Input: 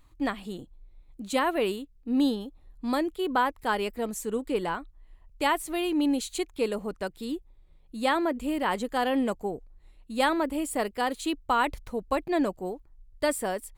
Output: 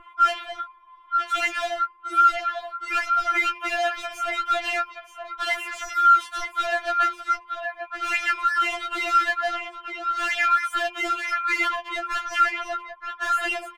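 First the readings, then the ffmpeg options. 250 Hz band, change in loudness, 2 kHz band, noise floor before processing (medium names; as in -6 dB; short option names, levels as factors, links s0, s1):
-15.5 dB, +5.5 dB, +10.0 dB, -57 dBFS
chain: -filter_complex "[0:a]areverse,acompressor=mode=upward:threshold=0.00501:ratio=2.5,areverse,highshelf=f=2900:t=q:w=3:g=-13.5,alimiter=limit=0.0944:level=0:latency=1:release=17,bandreject=f=186.6:t=h:w=4,bandreject=f=373.2:t=h:w=4,bandreject=f=559.8:t=h:w=4,bandreject=f=746.4:t=h:w=4,bandreject=f=933:t=h:w=4,bandreject=f=1119.6:t=h:w=4,bandreject=f=1306.2:t=h:w=4,bandreject=f=1492.8:t=h:w=4,bandreject=f=1679.4:t=h:w=4,bandreject=f=1866:t=h:w=4,bandreject=f=2052.6:t=h:w=4,bandreject=f=2239.2:t=h:w=4,bandreject=f=2425.8:t=h:w=4,bandreject=f=2612.4:t=h:w=4,bandreject=f=2799:t=h:w=4,bandreject=f=2985.6:t=h:w=4,bandreject=f=3172.2:t=h:w=4,bandreject=f=3358.8:t=h:w=4,bandreject=f=3545.4:t=h:w=4,bandreject=f=3732:t=h:w=4,bandreject=f=3918.6:t=h:w=4,bandreject=f=4105.2:t=h:w=4,bandreject=f=4291.8:t=h:w=4,bandreject=f=4478.4:t=h:w=4,bandreject=f=4665:t=h:w=4,bandreject=f=4851.6:t=h:w=4,bandreject=f=5038.2:t=h:w=4,aeval=exprs='val(0)*sin(2*PI*1100*n/s)':c=same,asplit=2[s0][s1];[s1]aecho=0:1:928:0.237[s2];[s0][s2]amix=inputs=2:normalize=0,aeval=exprs='val(0)+0.00708*(sin(2*PI*50*n/s)+sin(2*PI*2*50*n/s)/2+sin(2*PI*3*50*n/s)/3+sin(2*PI*4*50*n/s)/4+sin(2*PI*5*50*n/s)/5)':c=same,asplit=2[s3][s4];[s4]highpass=f=720:p=1,volume=12.6,asoftclip=type=tanh:threshold=0.119[s5];[s3][s5]amix=inputs=2:normalize=0,lowpass=f=2900:p=1,volume=0.501,equalizer=f=460:w=1.3:g=-11.5,afftfilt=real='re*4*eq(mod(b,16),0)':imag='im*4*eq(mod(b,16),0)':win_size=2048:overlap=0.75,volume=1.88"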